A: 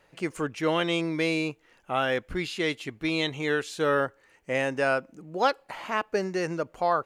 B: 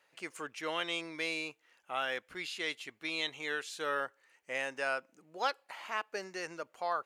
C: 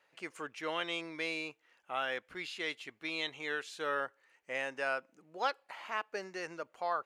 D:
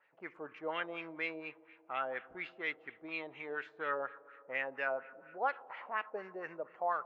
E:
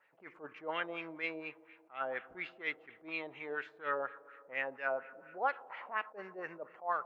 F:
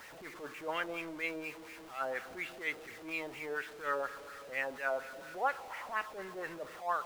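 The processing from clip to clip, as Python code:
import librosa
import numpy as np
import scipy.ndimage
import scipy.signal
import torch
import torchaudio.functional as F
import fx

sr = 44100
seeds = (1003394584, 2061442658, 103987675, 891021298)

y1 = fx.highpass(x, sr, hz=1200.0, slope=6)
y1 = y1 * librosa.db_to_amplitude(-4.5)
y2 = fx.high_shelf(y1, sr, hz=5300.0, db=-8.0)
y3 = fx.rev_spring(y2, sr, rt60_s=2.9, pass_ms=(34, 54), chirp_ms=35, drr_db=16.0)
y3 = fx.filter_lfo_lowpass(y3, sr, shape='sine', hz=4.2, low_hz=650.0, high_hz=2400.0, q=2.2)
y3 = y3 * librosa.db_to_amplitude(-4.0)
y4 = fx.attack_slew(y3, sr, db_per_s=240.0)
y4 = y4 * librosa.db_to_amplitude(1.0)
y5 = y4 + 0.5 * 10.0 ** (-46.5 / 20.0) * np.sign(y4)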